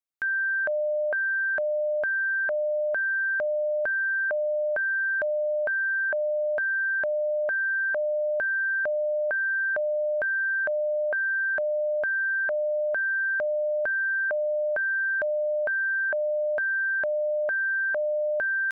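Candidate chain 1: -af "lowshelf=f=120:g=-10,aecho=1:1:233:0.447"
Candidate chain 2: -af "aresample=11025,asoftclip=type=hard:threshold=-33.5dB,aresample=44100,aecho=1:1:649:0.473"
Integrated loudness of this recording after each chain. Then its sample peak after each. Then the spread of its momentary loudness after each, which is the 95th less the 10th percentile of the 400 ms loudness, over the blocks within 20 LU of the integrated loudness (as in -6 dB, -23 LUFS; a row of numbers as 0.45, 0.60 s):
-24.5, -32.0 LUFS; -19.5, -28.0 dBFS; 3, 3 LU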